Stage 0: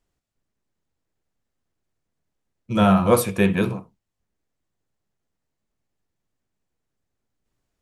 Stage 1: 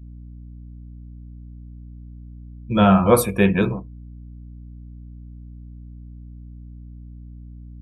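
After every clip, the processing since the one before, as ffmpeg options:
ffmpeg -i in.wav -af "aeval=exprs='val(0)+0.0112*(sin(2*PI*60*n/s)+sin(2*PI*2*60*n/s)/2+sin(2*PI*3*60*n/s)/3+sin(2*PI*4*60*n/s)/4+sin(2*PI*5*60*n/s)/5)':channel_layout=same,afftdn=noise_reduction=23:noise_floor=-38,volume=2dB" out.wav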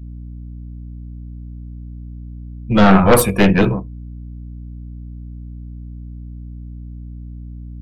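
ffmpeg -i in.wav -af "aeval=exprs='0.891*(cos(1*acos(clip(val(0)/0.891,-1,1)))-cos(1*PI/2))+0.316*(cos(4*acos(clip(val(0)/0.891,-1,1)))-cos(4*PI/2))+0.316*(cos(5*acos(clip(val(0)/0.891,-1,1)))-cos(5*PI/2))+0.0631*(cos(6*acos(clip(val(0)/0.891,-1,1)))-cos(6*PI/2))+0.0794*(cos(8*acos(clip(val(0)/0.891,-1,1)))-cos(8*PI/2))':channel_layout=same,volume=-2dB" out.wav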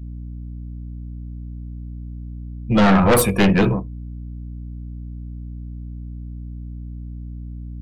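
ffmpeg -i in.wav -af "asoftclip=type=tanh:threshold=-8dB" out.wav

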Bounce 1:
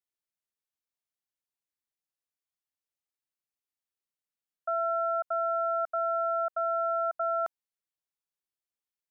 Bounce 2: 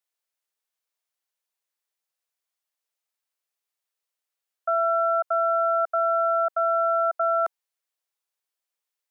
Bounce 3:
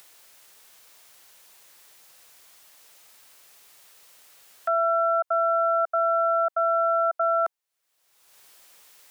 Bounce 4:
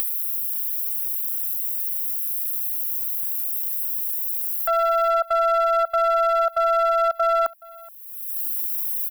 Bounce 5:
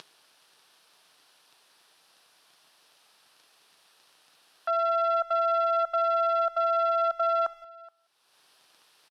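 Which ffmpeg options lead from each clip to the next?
ffmpeg -i in.wav -af "highpass=frequency=430:width=0.5412,highpass=frequency=430:width=1.3066,volume=6.5dB" out.wav
ffmpeg -i in.wav -af "acompressor=mode=upward:threshold=-28dB:ratio=2.5" out.wav
ffmpeg -i in.wav -af "aexciter=amount=10.7:drive=8.9:freq=9900,aeval=exprs='clip(val(0),-1,0.106)':channel_layout=same,aecho=1:1:423:0.075,volume=3dB" out.wav
ffmpeg -i in.wav -filter_complex "[0:a]highpass=frequency=140:width=0.5412,highpass=frequency=140:width=1.3066,equalizer=frequency=210:width_type=q:width=4:gain=-4,equalizer=frequency=530:width_type=q:width=4:gain=-4,equalizer=frequency=2100:width_type=q:width=4:gain=-7,lowpass=frequency=5400:width=0.5412,lowpass=frequency=5400:width=1.3066,bandreject=frequency=412.7:width_type=h:width=4,bandreject=frequency=825.4:width_type=h:width=4,bandreject=frequency=1238.1:width_type=h:width=4,bandreject=frequency=1650.8:width_type=h:width=4,bandreject=frequency=2063.5:width_type=h:width=4,bandreject=frequency=2476.2:width_type=h:width=4,bandreject=frequency=2888.9:width_type=h:width=4,bandreject=frequency=3301.6:width_type=h:width=4,bandreject=frequency=3714.3:width_type=h:width=4,bandreject=frequency=4127:width_type=h:width=4,bandreject=frequency=4539.7:width_type=h:width=4,bandreject=frequency=4952.4:width_type=h:width=4,bandreject=frequency=5365.1:width_type=h:width=4,bandreject=frequency=5777.8:width_type=h:width=4,bandreject=frequency=6190.5:width_type=h:width=4,bandreject=frequency=6603.2:width_type=h:width=4,bandreject=frequency=7015.9:width_type=h:width=4,bandreject=frequency=7428.6:width_type=h:width=4,bandreject=frequency=7841.3:width_type=h:width=4,bandreject=frequency=8254:width_type=h:width=4,bandreject=frequency=8666.7:width_type=h:width=4,bandreject=frequency=9079.4:width_type=h:width=4,bandreject=frequency=9492.1:width_type=h:width=4,bandreject=frequency=9904.8:width_type=h:width=4,bandreject=frequency=10317.5:width_type=h:width=4,bandreject=frequency=10730.2:width_type=h:width=4,bandreject=frequency=11142.9:width_type=h:width=4,bandreject=frequency=11555.6:width_type=h:width=4,bandreject=frequency=11968.3:width_type=h:width=4,bandreject=frequency=12381:width_type=h:width=4,bandreject=frequency=12793.7:width_type=h:width=4,bandreject=frequency=13206.4:width_type=h:width=4,asplit=2[link_01][link_02];[link_02]adelay=180,highpass=300,lowpass=3400,asoftclip=type=hard:threshold=-23dB,volume=-23dB[link_03];[link_01][link_03]amix=inputs=2:normalize=0,volume=-5dB" out.wav

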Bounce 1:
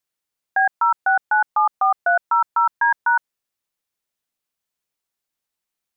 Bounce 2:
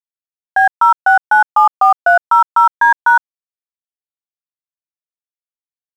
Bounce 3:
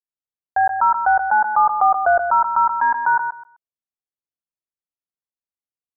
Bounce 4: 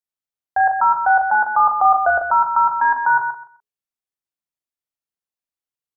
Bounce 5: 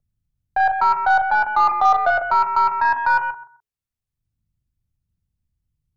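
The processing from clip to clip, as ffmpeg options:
ffmpeg -i in.wav -af "lowpass=1800,aeval=exprs='sgn(val(0))*max(abs(val(0))-0.00668,0)':channel_layout=same,dynaudnorm=framelen=180:gausssize=5:maxgain=11.5dB" out.wav
ffmpeg -i in.wav -af "lowpass=frequency=1300:width=0.5412,lowpass=frequency=1300:width=1.3066,equalizer=frequency=1000:width_type=o:width=1.8:gain=-4.5,aecho=1:1:129|258|387:0.398|0.0756|0.0144" out.wav
ffmpeg -i in.wav -filter_complex "[0:a]bandreject=frequency=60:width_type=h:width=6,bandreject=frequency=120:width_type=h:width=6,bandreject=frequency=180:width_type=h:width=6,bandreject=frequency=240:width_type=h:width=6,bandreject=frequency=300:width_type=h:width=6,bandreject=frequency=360:width_type=h:width=6,bandreject=frequency=420:width_type=h:width=6,bandreject=frequency=480:width_type=h:width=6,asplit=2[link_01][link_02];[link_02]adelay=38,volume=-6dB[link_03];[link_01][link_03]amix=inputs=2:normalize=0" out.wav
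ffmpeg -i in.wav -filter_complex "[0:a]aeval=exprs='0.596*(cos(1*acos(clip(val(0)/0.596,-1,1)))-cos(1*PI/2))+0.0237*(cos(6*acos(clip(val(0)/0.596,-1,1)))-cos(6*PI/2))':channel_layout=same,acrossover=split=130|360[link_01][link_02][link_03];[link_01]acompressor=mode=upward:threshold=-41dB:ratio=2.5[link_04];[link_04][link_02][link_03]amix=inputs=3:normalize=0,volume=-1.5dB" out.wav

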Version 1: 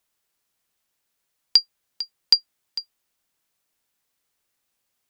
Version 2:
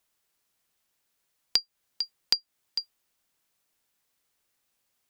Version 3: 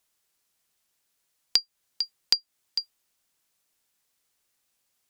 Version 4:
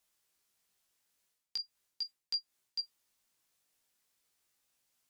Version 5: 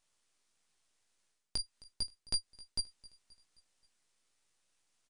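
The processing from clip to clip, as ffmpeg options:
ffmpeg -i in.wav -af "acompressor=threshold=-24dB:ratio=3" out.wav
ffmpeg -i in.wav -af "equalizer=frequency=7900:width_type=o:width=2.3:gain=4,volume=-1dB" out.wav
ffmpeg -i in.wav -af "areverse,acompressor=threshold=-31dB:ratio=16,areverse,flanger=delay=16:depth=4.3:speed=0.4" out.wav
ffmpeg -i in.wav -af "aeval=exprs='max(val(0),0)':channel_layout=same,aecho=1:1:264|528|792|1056:0.0891|0.0463|0.0241|0.0125,aresample=22050,aresample=44100,volume=5.5dB" out.wav

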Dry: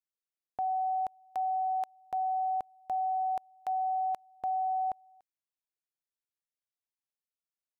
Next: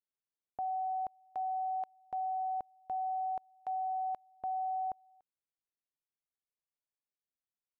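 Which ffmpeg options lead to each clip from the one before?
ffmpeg -i in.wav -af "lowpass=frequency=1000:poles=1,volume=-2.5dB" out.wav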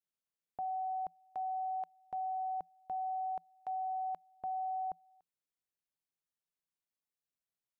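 ffmpeg -i in.wav -af "equalizer=frequency=170:width_type=o:width=0.22:gain=8.5,volume=-2dB" out.wav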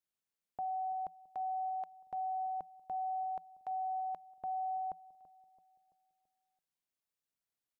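ffmpeg -i in.wav -filter_complex "[0:a]asplit=2[link_01][link_02];[link_02]adelay=334,lowpass=frequency=1100:poles=1,volume=-16.5dB,asplit=2[link_03][link_04];[link_04]adelay=334,lowpass=frequency=1100:poles=1,volume=0.52,asplit=2[link_05][link_06];[link_06]adelay=334,lowpass=frequency=1100:poles=1,volume=0.52,asplit=2[link_07][link_08];[link_08]adelay=334,lowpass=frequency=1100:poles=1,volume=0.52,asplit=2[link_09][link_10];[link_10]adelay=334,lowpass=frequency=1100:poles=1,volume=0.52[link_11];[link_01][link_03][link_05][link_07][link_09][link_11]amix=inputs=6:normalize=0" out.wav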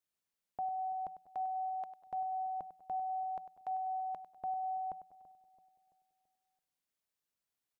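ffmpeg -i in.wav -af "aecho=1:1:99|198|297|396|495:0.224|0.103|0.0474|0.0218|0.01,volume=1dB" out.wav

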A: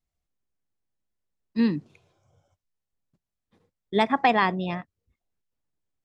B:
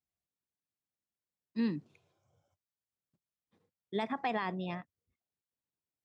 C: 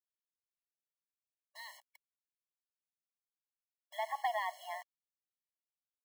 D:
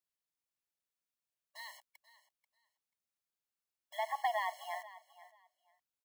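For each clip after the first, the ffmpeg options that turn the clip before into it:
ffmpeg -i in.wav -af "alimiter=limit=-15dB:level=0:latency=1:release=38,highpass=88,volume=-8.5dB" out.wav
ffmpeg -i in.wav -af "acompressor=threshold=-55dB:ratio=1.5,acrusher=bits=9:mix=0:aa=0.000001,afftfilt=real='re*eq(mod(floor(b*sr/1024/560),2),1)':imag='im*eq(mod(floor(b*sr/1024/560),2),1)':win_size=1024:overlap=0.75,volume=9.5dB" out.wav
ffmpeg -i in.wav -af "aecho=1:1:487|974:0.133|0.0253,volume=1dB" out.wav

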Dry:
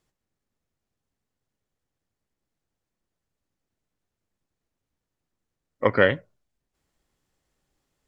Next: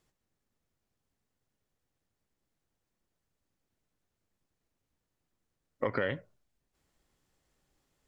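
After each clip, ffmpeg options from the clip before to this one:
ffmpeg -i in.wav -af "alimiter=limit=-11dB:level=0:latency=1:release=85,acompressor=threshold=-29dB:ratio=3" out.wav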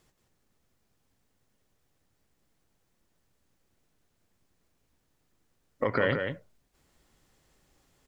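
ffmpeg -i in.wav -af "alimiter=limit=-21dB:level=0:latency=1:release=171,aecho=1:1:176:0.501,volume=8dB" out.wav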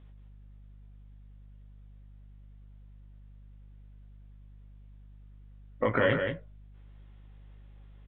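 ffmpeg -i in.wav -filter_complex "[0:a]aeval=exprs='val(0)+0.00224*(sin(2*PI*50*n/s)+sin(2*PI*2*50*n/s)/2+sin(2*PI*3*50*n/s)/3+sin(2*PI*4*50*n/s)/4+sin(2*PI*5*50*n/s)/5)':channel_layout=same,asplit=2[link_01][link_02];[link_02]adelay=18,volume=-4.5dB[link_03];[link_01][link_03]amix=inputs=2:normalize=0,aresample=8000,aresample=44100" out.wav

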